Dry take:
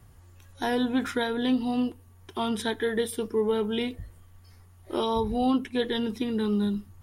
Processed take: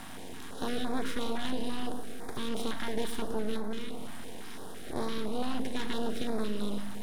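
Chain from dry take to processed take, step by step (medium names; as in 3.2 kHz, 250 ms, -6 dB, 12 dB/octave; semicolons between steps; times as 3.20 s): spectral levelling over time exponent 0.4; high-pass 150 Hz 12 dB/octave; in parallel at +2 dB: peak limiter -32 dBFS, peak gain reduction 21.5 dB; 3.56–4.96 s: on the sum: compression, threshold -23 dBFS, peak gain reduction 6 dB; half-wave rectifier; filtered feedback delay 108 ms, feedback 68%, level -11 dB; on a send at -22 dB: reverberation RT60 1.0 s, pre-delay 6 ms; on the sum: step-sequenced notch 5.9 Hz 440–2900 Hz; trim -8.5 dB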